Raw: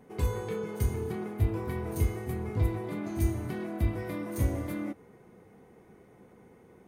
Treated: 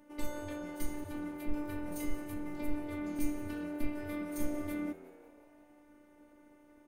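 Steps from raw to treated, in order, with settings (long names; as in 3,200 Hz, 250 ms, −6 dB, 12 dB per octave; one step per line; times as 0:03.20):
phases set to zero 295 Hz
0:01.04–0:03.19: all-pass dispersion lows, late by 72 ms, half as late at 360 Hz
echo with shifted repeats 180 ms, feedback 55%, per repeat +87 Hz, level −19 dB
level −1.5 dB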